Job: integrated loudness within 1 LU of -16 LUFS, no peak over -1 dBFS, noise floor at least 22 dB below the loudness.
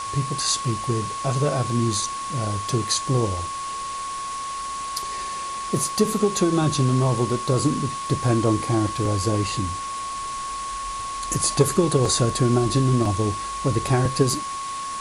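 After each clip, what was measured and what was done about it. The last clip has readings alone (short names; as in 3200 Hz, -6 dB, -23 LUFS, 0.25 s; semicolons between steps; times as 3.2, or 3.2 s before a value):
steady tone 1100 Hz; tone level -28 dBFS; noise floor -30 dBFS; noise floor target -46 dBFS; loudness -23.5 LUFS; peak -6.0 dBFS; loudness target -16.0 LUFS
-> notch 1100 Hz, Q 30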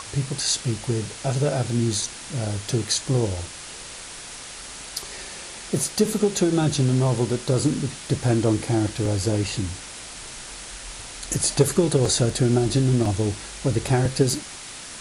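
steady tone none; noise floor -38 dBFS; noise floor target -45 dBFS
-> noise print and reduce 7 dB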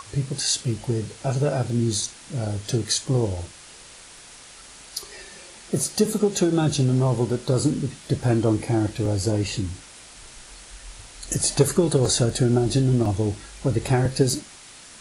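noise floor -45 dBFS; loudness -23.0 LUFS; peak -7.0 dBFS; loudness target -16.0 LUFS
-> gain +7 dB; limiter -1 dBFS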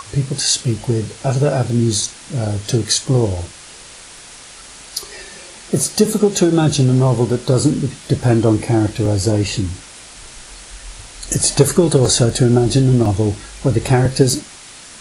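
loudness -16.0 LUFS; peak -1.0 dBFS; noise floor -38 dBFS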